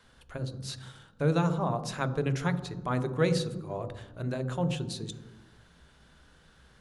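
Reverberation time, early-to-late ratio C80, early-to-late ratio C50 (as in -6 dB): 1.1 s, 14.0 dB, 12.5 dB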